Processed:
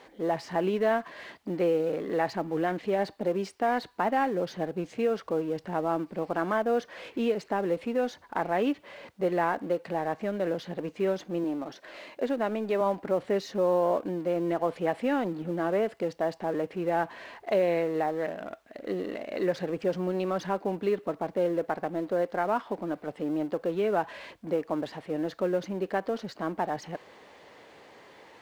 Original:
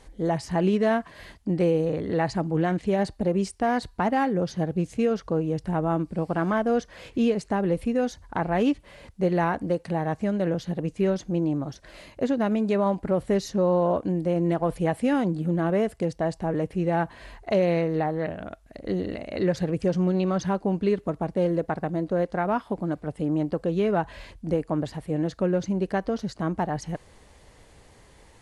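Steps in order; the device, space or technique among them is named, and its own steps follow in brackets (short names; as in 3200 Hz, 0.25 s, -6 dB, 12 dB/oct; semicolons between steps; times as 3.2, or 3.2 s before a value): 11.44–12.81 HPF 190 Hz 12 dB/oct; phone line with mismatched companding (BPF 310–3600 Hz; G.711 law mismatch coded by mu); gain -2 dB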